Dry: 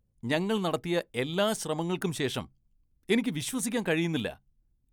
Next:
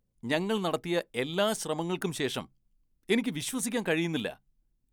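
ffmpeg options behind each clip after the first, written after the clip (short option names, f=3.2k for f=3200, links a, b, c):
-af "equalizer=f=76:w=0.93:g=-9.5"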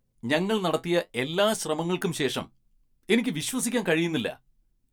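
-af "flanger=delay=7.7:depth=5.2:regen=-52:speed=0.69:shape=sinusoidal,volume=8dB"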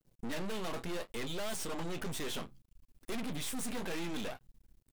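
-filter_complex "[0:a]aeval=exprs='(tanh(39.8*val(0)+0.55)-tanh(0.55))/39.8':c=same,aeval=exprs='max(val(0),0)':c=same,asplit=2[a][b];[b]acompressor=threshold=-53dB:ratio=6,volume=2.5dB[c];[a][c]amix=inputs=2:normalize=0,volume=4dB"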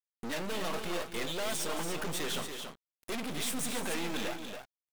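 -af "lowshelf=f=260:g=-7.5,acrusher=bits=7:mix=0:aa=0.5,aecho=1:1:221.6|282.8:0.251|0.447,volume=4.5dB"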